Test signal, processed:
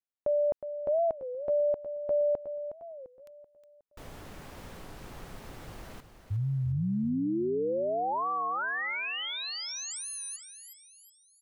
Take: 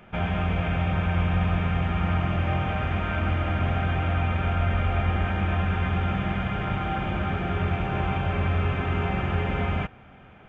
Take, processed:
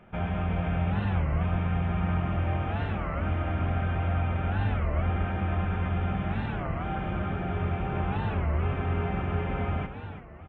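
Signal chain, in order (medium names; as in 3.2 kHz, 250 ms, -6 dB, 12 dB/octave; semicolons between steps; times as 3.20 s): treble shelf 2.4 kHz -10.5 dB; on a send: feedback delay 364 ms, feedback 43%, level -10.5 dB; on the sum: warped record 33 1/3 rpm, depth 250 cents; trim -3 dB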